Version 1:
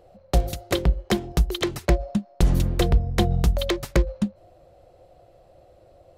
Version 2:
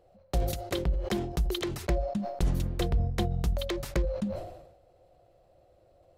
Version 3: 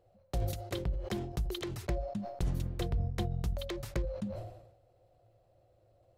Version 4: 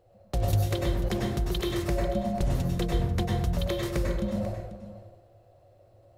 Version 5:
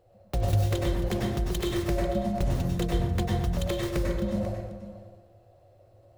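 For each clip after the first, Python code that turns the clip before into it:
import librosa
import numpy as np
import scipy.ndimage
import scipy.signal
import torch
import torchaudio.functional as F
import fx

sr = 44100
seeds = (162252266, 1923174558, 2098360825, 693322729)

y1 = fx.sustainer(x, sr, db_per_s=61.0)
y1 = F.gain(torch.from_numpy(y1), -9.0).numpy()
y2 = fx.peak_eq(y1, sr, hz=110.0, db=14.0, octaves=0.25)
y2 = F.gain(torch.from_numpy(y2), -6.5).numpy()
y3 = y2 + 10.0 ** (-14.0 / 20.0) * np.pad(y2, (int(491 * sr / 1000.0), 0))[:len(y2)]
y3 = fx.rev_plate(y3, sr, seeds[0], rt60_s=0.66, hf_ratio=0.65, predelay_ms=85, drr_db=-1.0)
y3 = F.gain(torch.from_numpy(y3), 5.0).numpy()
y4 = fx.tracing_dist(y3, sr, depth_ms=0.2)
y4 = fx.echo_feedback(y4, sr, ms=119, feedback_pct=52, wet_db=-15)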